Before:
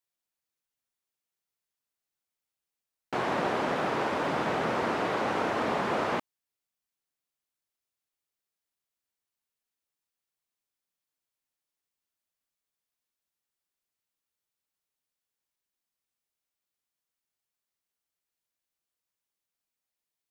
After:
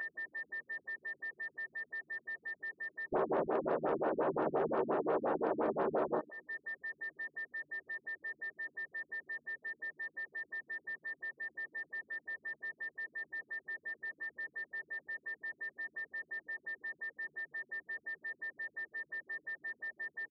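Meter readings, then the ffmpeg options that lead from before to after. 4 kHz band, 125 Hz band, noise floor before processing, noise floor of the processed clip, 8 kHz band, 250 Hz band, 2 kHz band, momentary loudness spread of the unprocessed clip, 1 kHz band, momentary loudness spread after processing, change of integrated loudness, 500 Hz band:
under -20 dB, -10.5 dB, under -85 dBFS, -77 dBFS, under -25 dB, -5.0 dB, +2.5 dB, 3 LU, -8.0 dB, 9 LU, -10.5 dB, -2.0 dB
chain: -filter_complex "[0:a]aeval=exprs='val(0)+0.5*0.0126*sgn(val(0))':c=same,aecho=1:1:252:0.075,acrossover=split=5400[s0][s1];[s1]acompressor=threshold=0.00224:ratio=4:attack=1:release=60[s2];[s0][s2]amix=inputs=2:normalize=0,equalizer=f=400:t=o:w=0.67:g=7,equalizer=f=2500:t=o:w=0.67:g=-10,equalizer=f=6300:t=o:w=0.67:g=-5,afwtdn=0.0141,aeval=exprs='val(0)+0.0112*sin(2*PI*1800*n/s)':c=same,highpass=190,equalizer=f=240:t=q:w=4:g=-4,equalizer=f=600:t=q:w=4:g=4,equalizer=f=2000:t=q:w=4:g=-6,equalizer=f=3200:t=q:w=4:g=-4,equalizer=f=5100:t=q:w=4:g=-5,lowpass=f=8300:w=0.5412,lowpass=f=8300:w=1.3066,acompressor=threshold=0.00891:ratio=6,asplit=2[s3][s4];[s4]adelay=13,volume=0.562[s5];[s3][s5]amix=inputs=2:normalize=0,asoftclip=type=hard:threshold=0.0211,afftfilt=real='re*lt(b*sr/1024,280*pow(5900/280,0.5+0.5*sin(2*PI*5.7*pts/sr)))':imag='im*lt(b*sr/1024,280*pow(5900/280,0.5+0.5*sin(2*PI*5.7*pts/sr)))':win_size=1024:overlap=0.75,volume=2.82"

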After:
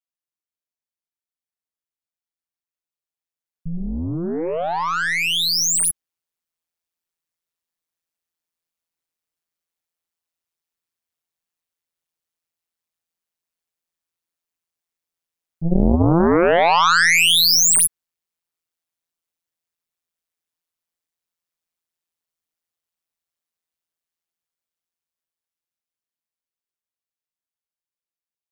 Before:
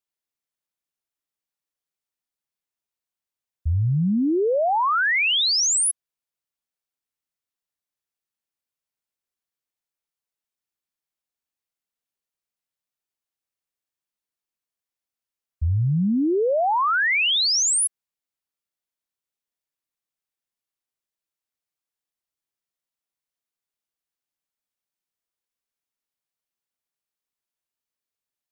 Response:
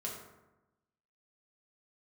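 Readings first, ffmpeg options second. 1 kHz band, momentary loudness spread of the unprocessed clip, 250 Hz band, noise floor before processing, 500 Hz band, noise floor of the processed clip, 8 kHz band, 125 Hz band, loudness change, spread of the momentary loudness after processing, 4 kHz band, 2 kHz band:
+3.5 dB, 8 LU, +3.0 dB, under -85 dBFS, +3.5 dB, under -85 dBFS, +4.0 dB, -0.5 dB, +4.5 dB, 16 LU, +4.0 dB, +3.5 dB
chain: -af "aeval=exprs='val(0)*sin(2*PI*84*n/s)':c=same,dynaudnorm=f=680:g=13:m=3.16,aeval=exprs='0.447*(cos(1*acos(clip(val(0)/0.447,-1,1)))-cos(1*PI/2))+0.02*(cos(2*acos(clip(val(0)/0.447,-1,1)))-cos(2*PI/2))+0.178*(cos(3*acos(clip(val(0)/0.447,-1,1)))-cos(3*PI/2))+0.0562*(cos(5*acos(clip(val(0)/0.447,-1,1)))-cos(5*PI/2))+0.00447*(cos(6*acos(clip(val(0)/0.447,-1,1)))-cos(6*PI/2))':c=same,volume=1.33"

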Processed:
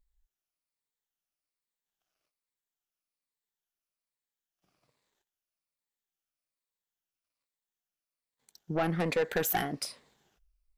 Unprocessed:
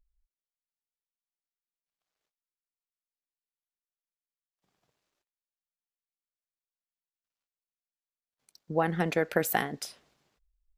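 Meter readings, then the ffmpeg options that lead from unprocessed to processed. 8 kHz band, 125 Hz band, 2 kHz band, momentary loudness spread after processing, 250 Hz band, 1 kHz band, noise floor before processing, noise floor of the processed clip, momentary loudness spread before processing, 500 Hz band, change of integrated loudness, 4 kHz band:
+0.5 dB, -1.0 dB, -3.0 dB, 8 LU, -1.5 dB, -2.5 dB, under -85 dBFS, under -85 dBFS, 11 LU, -1.5 dB, -1.5 dB, +1.5 dB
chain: -af "afftfilt=real='re*pow(10,7/40*sin(2*PI*(0.98*log(max(b,1)*sr/1024/100)/log(2)-(-1.2)*(pts-256)/sr)))':imag='im*pow(10,7/40*sin(2*PI*(0.98*log(max(b,1)*sr/1024/100)/log(2)-(-1.2)*(pts-256)/sr)))':win_size=1024:overlap=0.75,asoftclip=type=tanh:threshold=0.0631,volume=1.19"

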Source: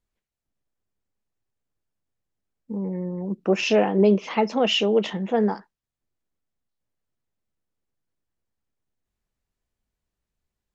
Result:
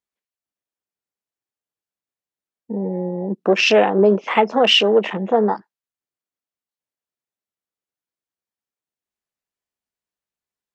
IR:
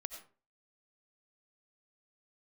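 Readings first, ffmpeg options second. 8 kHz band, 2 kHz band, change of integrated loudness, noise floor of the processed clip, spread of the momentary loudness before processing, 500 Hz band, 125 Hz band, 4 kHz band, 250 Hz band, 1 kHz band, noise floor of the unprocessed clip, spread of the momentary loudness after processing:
no reading, +9.0 dB, +5.5 dB, under -85 dBFS, 11 LU, +5.5 dB, +1.0 dB, +9.0 dB, +1.5 dB, +8.0 dB, under -85 dBFS, 12 LU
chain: -filter_complex "[0:a]afwtdn=0.02,highpass=f=560:p=1,asplit=2[s0][s1];[s1]acompressor=threshold=0.0316:ratio=6,volume=1.12[s2];[s0][s2]amix=inputs=2:normalize=0,volume=2.11"

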